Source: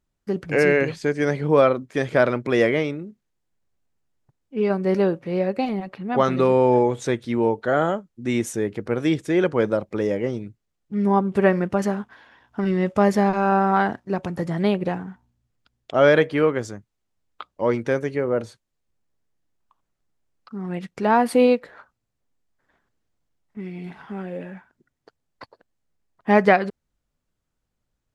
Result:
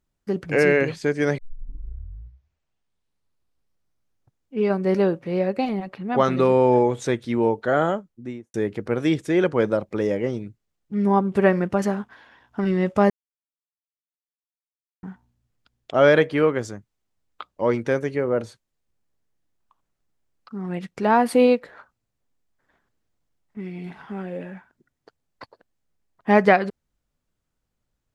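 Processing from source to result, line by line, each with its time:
1.38 tape start 3.20 s
7.96–8.54 studio fade out
13.1–15.03 mute

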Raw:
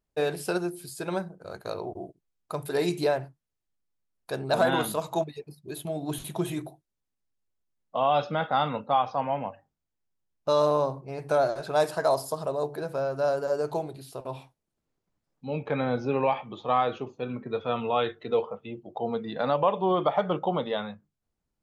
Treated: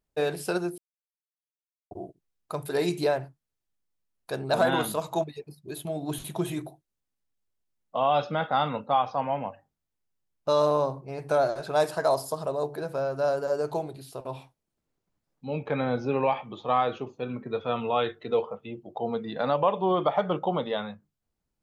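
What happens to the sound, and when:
0.78–1.91 mute

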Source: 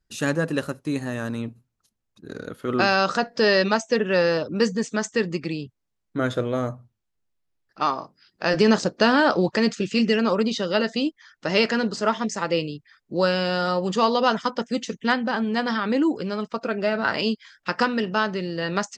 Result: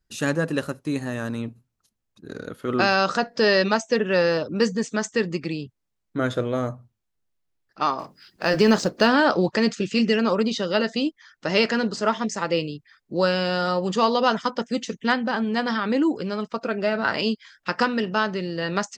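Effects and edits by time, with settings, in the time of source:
7.99–9.07 G.711 law mismatch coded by mu

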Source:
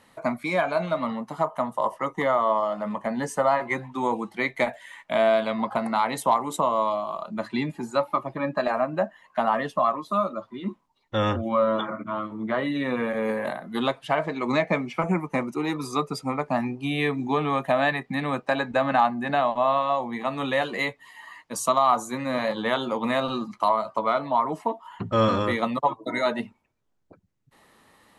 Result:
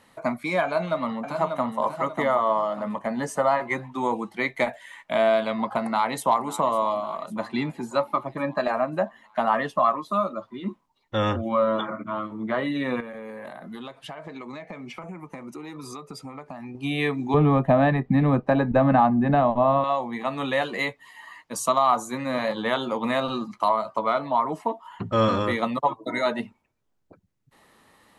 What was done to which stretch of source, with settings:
0.64–1.8 echo throw 0.59 s, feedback 35%, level -6 dB
5.8–6.46 echo throw 0.55 s, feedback 60%, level -16 dB
9.49–10.11 dynamic EQ 1500 Hz, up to +3 dB, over -30 dBFS, Q 0.89
13–16.75 compressor 10:1, threshold -34 dBFS
17.34–19.84 tilt -4.5 dB/oct

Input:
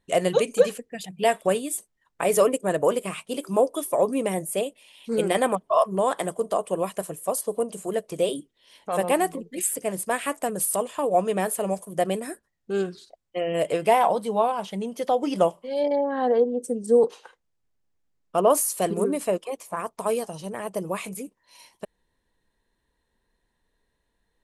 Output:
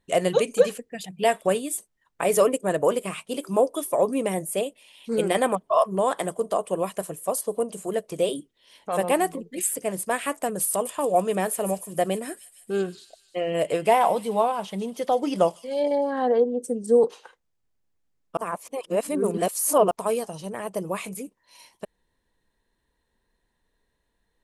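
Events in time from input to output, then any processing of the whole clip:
10.7–16.23 thin delay 0.152 s, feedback 63%, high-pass 4700 Hz, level -7 dB
18.37–19.91 reverse

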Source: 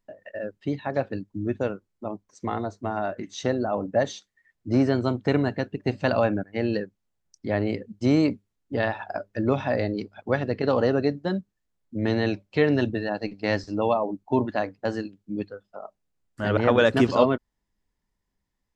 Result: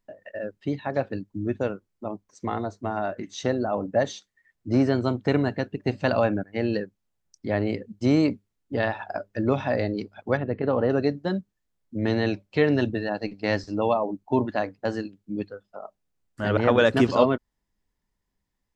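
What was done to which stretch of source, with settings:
10.37–10.9 air absorption 480 m

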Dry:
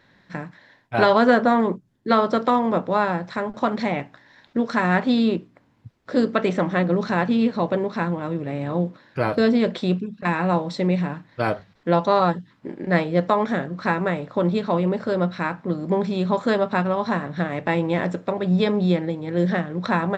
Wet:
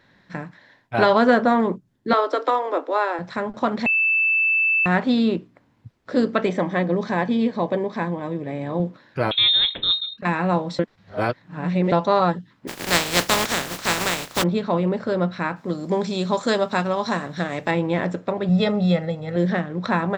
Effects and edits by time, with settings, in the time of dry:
2.13–3.19 Chebyshev high-pass 270 Hz, order 8
3.86–4.86 bleep 2640 Hz -16 dBFS
6.47–8.8 notch comb 1400 Hz
9.31–10.18 inverted band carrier 3900 Hz
10.79–11.92 reverse
12.67–14.42 spectral contrast lowered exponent 0.27
15.56–17.71 tone controls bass -3 dB, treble +14 dB
18.49–19.36 comb 1.5 ms, depth 73%

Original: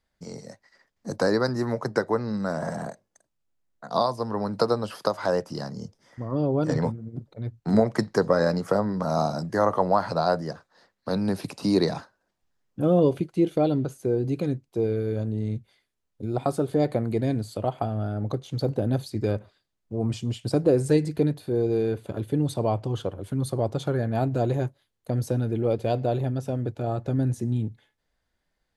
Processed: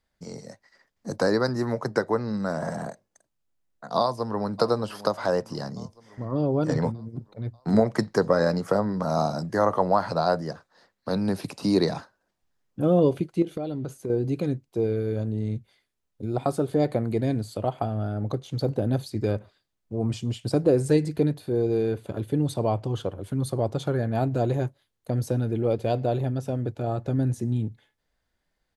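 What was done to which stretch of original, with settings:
3.99–4.55 echo throw 0.59 s, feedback 60%, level -16 dB
13.42–14.1 compressor 12:1, threshold -26 dBFS

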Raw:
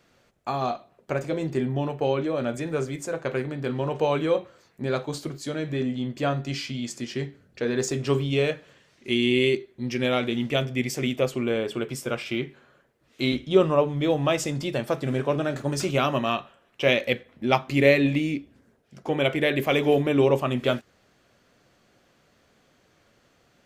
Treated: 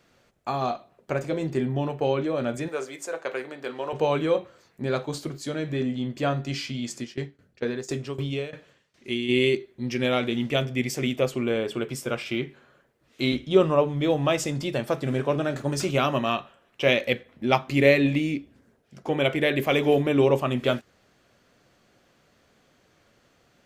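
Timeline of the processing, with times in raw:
2.68–3.93 HPF 460 Hz
7.02–9.28 tremolo saw down 5.3 Hz -> 1.9 Hz, depth 90%

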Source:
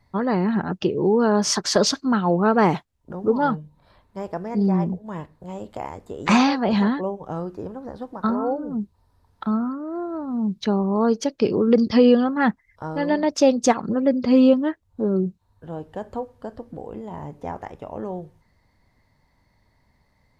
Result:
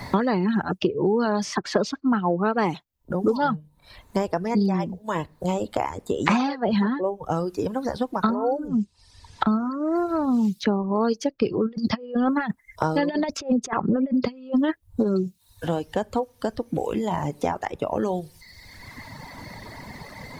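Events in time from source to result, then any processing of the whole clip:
8.68–9.96 LPF 8200 Hz 24 dB/oct
11.65–15.07 negative-ratio compressor -22 dBFS, ratio -0.5
whole clip: reverb removal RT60 1.3 s; three-band squash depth 100%

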